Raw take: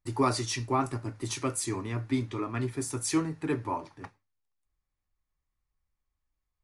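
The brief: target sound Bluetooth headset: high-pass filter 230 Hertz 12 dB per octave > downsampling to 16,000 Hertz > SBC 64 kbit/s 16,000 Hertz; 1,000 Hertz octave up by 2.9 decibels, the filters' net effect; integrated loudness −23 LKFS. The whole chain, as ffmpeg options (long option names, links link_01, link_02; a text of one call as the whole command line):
ffmpeg -i in.wav -af "highpass=230,equalizer=frequency=1000:width_type=o:gain=3.5,aresample=16000,aresample=44100,volume=9dB" -ar 16000 -c:a sbc -b:a 64k out.sbc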